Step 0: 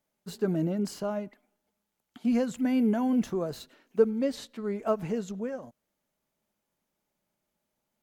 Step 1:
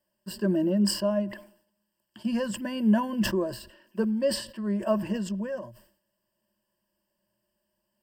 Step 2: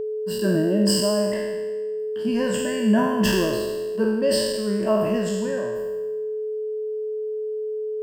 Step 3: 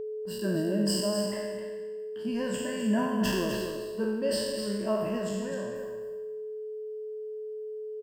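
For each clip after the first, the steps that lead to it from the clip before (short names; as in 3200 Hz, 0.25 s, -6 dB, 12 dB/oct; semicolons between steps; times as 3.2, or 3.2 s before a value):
ripple EQ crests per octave 1.3, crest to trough 17 dB; sustainer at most 110 dB/s; gain -1 dB
spectral trails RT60 1.25 s; whine 430 Hz -27 dBFS; gain +2 dB
echo 0.255 s -7.5 dB; gain -8 dB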